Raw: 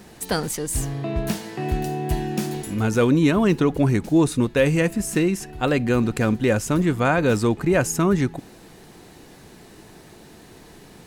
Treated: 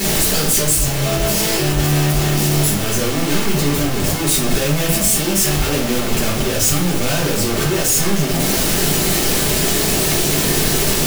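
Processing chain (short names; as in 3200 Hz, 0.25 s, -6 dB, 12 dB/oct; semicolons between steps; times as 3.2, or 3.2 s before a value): infinite clipping; high shelf 3200 Hz +10 dB; shoebox room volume 44 m³, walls mixed, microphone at 1.5 m; gain -7.5 dB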